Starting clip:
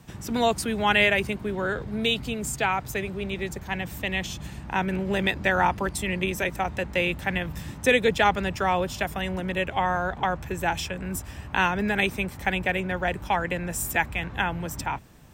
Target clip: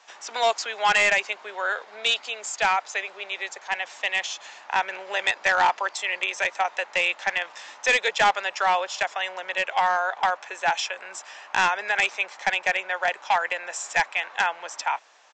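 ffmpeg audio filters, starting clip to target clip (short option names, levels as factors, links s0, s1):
-af "highpass=f=640:w=0.5412,highpass=f=640:w=1.3066,aresample=16000,asoftclip=type=hard:threshold=0.112,aresample=44100,volume=1.68"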